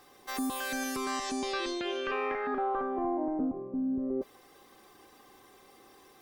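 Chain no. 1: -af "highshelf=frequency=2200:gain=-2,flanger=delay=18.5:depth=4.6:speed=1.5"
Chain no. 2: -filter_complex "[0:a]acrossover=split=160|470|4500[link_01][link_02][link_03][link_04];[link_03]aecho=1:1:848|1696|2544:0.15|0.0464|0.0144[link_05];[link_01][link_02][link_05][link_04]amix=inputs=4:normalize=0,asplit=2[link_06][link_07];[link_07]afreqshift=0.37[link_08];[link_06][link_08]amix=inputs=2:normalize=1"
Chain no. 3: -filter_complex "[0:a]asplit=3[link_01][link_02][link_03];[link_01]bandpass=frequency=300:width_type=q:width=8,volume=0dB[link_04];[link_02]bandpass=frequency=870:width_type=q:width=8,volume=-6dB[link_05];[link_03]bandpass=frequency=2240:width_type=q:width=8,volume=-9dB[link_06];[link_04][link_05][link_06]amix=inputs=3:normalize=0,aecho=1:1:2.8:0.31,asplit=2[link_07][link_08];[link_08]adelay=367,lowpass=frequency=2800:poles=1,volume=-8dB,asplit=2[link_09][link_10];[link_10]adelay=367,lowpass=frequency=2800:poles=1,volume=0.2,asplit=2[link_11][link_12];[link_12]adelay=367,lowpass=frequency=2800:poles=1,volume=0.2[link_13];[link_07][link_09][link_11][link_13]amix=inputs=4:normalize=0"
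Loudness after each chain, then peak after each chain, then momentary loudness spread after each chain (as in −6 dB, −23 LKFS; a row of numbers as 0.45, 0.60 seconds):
−36.0, −36.5, −40.5 LKFS; −23.0, −23.5, −24.0 dBFS; 4, 7, 10 LU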